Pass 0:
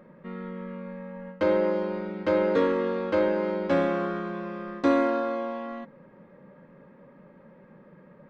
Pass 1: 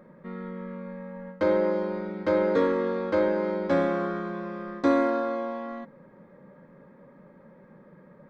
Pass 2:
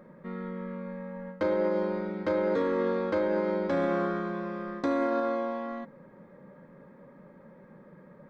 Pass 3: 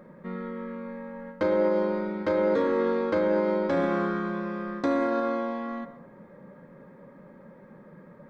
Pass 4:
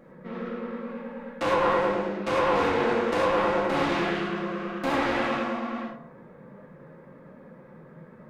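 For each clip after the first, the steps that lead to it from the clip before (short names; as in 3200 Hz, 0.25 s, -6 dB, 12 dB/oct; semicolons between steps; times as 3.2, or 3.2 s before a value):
bell 2800 Hz -9.5 dB 0.28 oct
limiter -19 dBFS, peak gain reduction 8 dB
reverb RT60 0.50 s, pre-delay 0.107 s, DRR 13.5 dB; gain +2.5 dB
self-modulated delay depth 0.57 ms; vibrato 9.4 Hz 79 cents; non-linear reverb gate 0.13 s flat, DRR -5 dB; gain -4 dB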